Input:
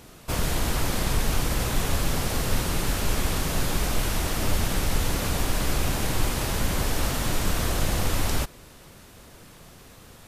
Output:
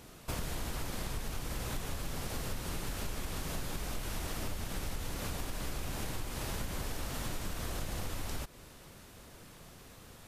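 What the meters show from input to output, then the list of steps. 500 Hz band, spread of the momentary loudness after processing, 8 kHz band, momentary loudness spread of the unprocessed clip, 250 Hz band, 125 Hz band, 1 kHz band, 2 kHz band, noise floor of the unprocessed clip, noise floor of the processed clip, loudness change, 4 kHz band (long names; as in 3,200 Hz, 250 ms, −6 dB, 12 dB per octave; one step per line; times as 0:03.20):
−12.5 dB, 14 LU, −12.5 dB, 1 LU, −12.5 dB, −13.0 dB, −12.5 dB, −12.5 dB, −49 dBFS, −54 dBFS, −13.0 dB, −12.5 dB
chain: downward compressor 10 to 1, threshold −28 dBFS, peak gain reduction 12 dB
level −5 dB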